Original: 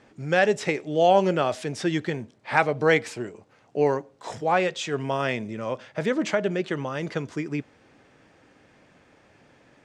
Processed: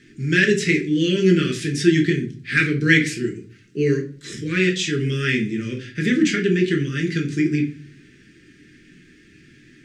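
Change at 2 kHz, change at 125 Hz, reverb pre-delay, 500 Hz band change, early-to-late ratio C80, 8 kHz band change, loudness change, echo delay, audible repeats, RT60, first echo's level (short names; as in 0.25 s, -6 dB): +7.5 dB, +10.0 dB, 5 ms, 0.0 dB, 16.5 dB, +8.5 dB, +5.0 dB, none, none, 0.40 s, none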